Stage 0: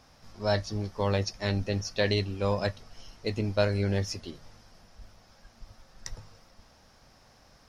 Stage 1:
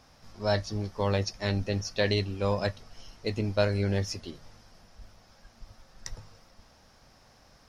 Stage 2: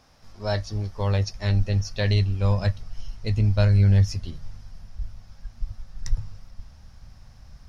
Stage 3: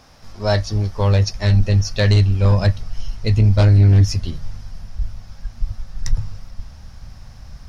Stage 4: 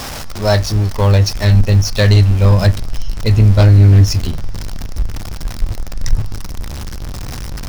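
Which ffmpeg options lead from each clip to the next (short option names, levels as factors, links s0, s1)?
-af anull
-af "asubboost=boost=10:cutoff=120"
-af "aeval=exprs='0.422*sin(PI/2*1.78*val(0)/0.422)':c=same"
-af "aeval=exprs='val(0)+0.5*0.0596*sgn(val(0))':c=same,volume=1.5"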